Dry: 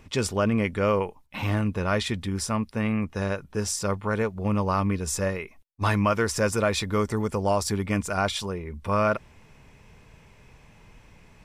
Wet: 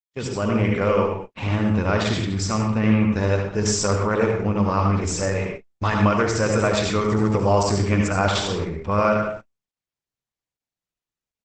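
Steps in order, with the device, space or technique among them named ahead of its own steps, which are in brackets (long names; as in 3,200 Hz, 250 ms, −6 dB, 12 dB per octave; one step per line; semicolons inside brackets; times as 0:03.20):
speakerphone in a meeting room (convolution reverb RT60 0.60 s, pre-delay 63 ms, DRR 1 dB; far-end echo of a speakerphone 150 ms, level −22 dB; automatic gain control gain up to 12 dB; noise gate −26 dBFS, range −58 dB; level −5 dB; Opus 12 kbit/s 48,000 Hz)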